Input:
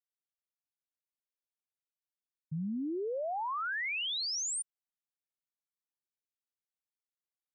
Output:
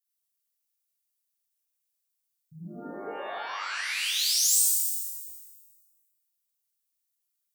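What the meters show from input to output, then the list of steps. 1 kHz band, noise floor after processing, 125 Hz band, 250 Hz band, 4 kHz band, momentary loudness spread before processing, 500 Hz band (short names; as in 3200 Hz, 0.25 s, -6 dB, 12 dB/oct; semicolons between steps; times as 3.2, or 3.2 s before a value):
-0.5 dB, -81 dBFS, -5.0 dB, -6.5 dB, +8.0 dB, 7 LU, -3.0 dB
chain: pre-emphasis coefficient 0.9; shimmer reverb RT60 1.4 s, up +12 st, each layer -2 dB, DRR -6.5 dB; gain +5.5 dB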